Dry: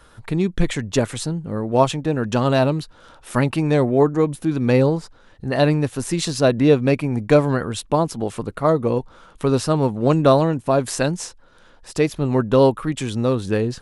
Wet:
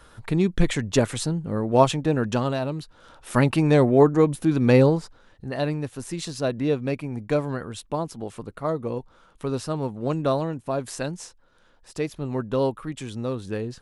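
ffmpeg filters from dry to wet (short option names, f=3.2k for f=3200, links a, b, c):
-af "volume=10dB,afade=t=out:st=2.18:d=0.42:silence=0.316228,afade=t=in:st=2.6:d=0.88:silence=0.281838,afade=t=out:st=4.81:d=0.75:silence=0.354813"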